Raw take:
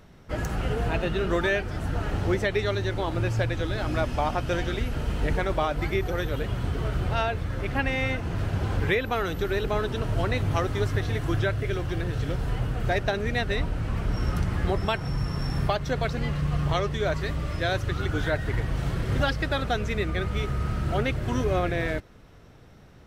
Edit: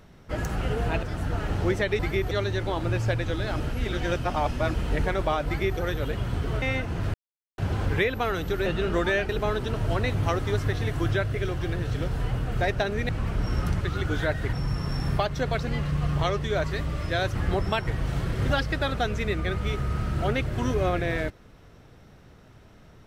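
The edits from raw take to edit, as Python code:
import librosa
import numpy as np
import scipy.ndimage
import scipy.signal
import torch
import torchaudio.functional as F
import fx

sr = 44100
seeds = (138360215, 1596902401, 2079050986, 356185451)

y = fx.edit(x, sr, fx.move(start_s=1.03, length_s=0.63, to_s=9.57),
    fx.reverse_span(start_s=3.91, length_s=1.14),
    fx.duplicate(start_s=5.78, length_s=0.32, to_s=2.62),
    fx.cut(start_s=6.93, length_s=1.04),
    fx.insert_silence(at_s=8.49, length_s=0.44),
    fx.cut(start_s=13.37, length_s=0.42),
    fx.swap(start_s=14.51, length_s=0.52, other_s=17.85, other_length_s=0.72), tone=tone)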